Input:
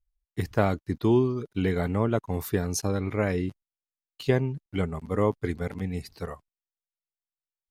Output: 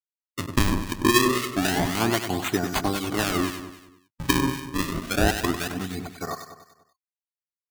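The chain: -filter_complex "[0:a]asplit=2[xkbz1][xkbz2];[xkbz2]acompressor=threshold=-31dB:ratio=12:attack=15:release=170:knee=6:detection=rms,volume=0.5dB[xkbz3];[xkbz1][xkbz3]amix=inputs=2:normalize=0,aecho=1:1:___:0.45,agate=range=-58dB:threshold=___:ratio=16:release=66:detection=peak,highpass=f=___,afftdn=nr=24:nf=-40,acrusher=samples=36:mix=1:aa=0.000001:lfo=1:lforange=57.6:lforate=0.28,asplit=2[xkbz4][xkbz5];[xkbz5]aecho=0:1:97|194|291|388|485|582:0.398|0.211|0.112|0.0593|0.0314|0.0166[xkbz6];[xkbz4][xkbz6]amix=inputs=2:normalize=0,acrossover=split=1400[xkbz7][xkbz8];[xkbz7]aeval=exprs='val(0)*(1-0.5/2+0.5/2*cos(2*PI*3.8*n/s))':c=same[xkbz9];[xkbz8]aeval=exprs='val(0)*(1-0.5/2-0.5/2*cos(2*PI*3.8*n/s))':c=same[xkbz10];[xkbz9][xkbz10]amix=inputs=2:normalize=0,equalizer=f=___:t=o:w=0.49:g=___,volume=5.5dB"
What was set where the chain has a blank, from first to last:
2.7, -45dB, 190, 460, -13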